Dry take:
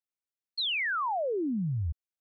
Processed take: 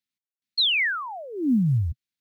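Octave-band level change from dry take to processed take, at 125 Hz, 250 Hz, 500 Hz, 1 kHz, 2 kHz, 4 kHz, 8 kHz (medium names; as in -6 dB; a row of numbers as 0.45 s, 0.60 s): +8.5 dB, +9.0 dB, -4.5 dB, -2.5 dB, +6.5 dB, +9.0 dB, no reading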